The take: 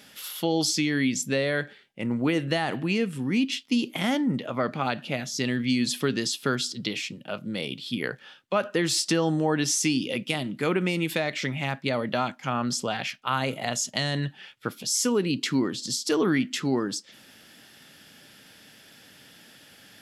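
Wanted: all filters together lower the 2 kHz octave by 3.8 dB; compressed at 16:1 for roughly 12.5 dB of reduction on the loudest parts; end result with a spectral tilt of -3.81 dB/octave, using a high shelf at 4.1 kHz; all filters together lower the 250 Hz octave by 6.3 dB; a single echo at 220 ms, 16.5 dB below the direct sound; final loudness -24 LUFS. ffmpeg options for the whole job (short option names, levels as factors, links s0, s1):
-af "equalizer=f=250:t=o:g=-8,equalizer=f=2000:t=o:g=-6.5,highshelf=f=4100:g=7,acompressor=threshold=0.0316:ratio=16,aecho=1:1:220:0.15,volume=3.35"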